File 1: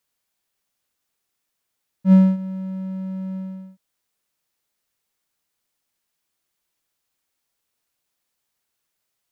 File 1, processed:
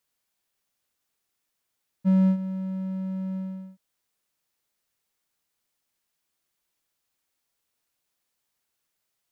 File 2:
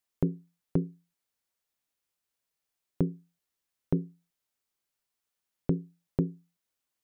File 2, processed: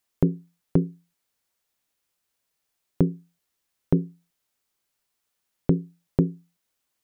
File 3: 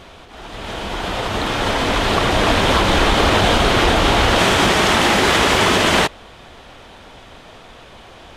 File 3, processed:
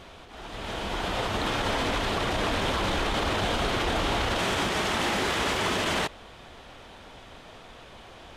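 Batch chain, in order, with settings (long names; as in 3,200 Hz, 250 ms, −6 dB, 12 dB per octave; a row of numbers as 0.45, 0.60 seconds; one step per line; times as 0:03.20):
brickwall limiter −12 dBFS
loudness normalisation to −27 LKFS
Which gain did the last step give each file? −2.0, +6.5, −6.0 decibels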